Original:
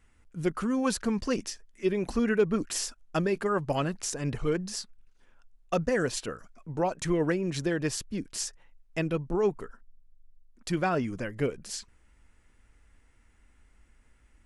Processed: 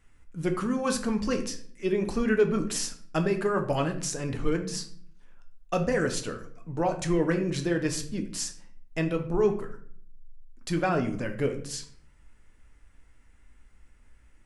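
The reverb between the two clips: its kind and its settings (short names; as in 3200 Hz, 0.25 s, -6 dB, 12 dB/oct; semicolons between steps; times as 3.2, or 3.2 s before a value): shoebox room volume 70 m³, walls mixed, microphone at 0.4 m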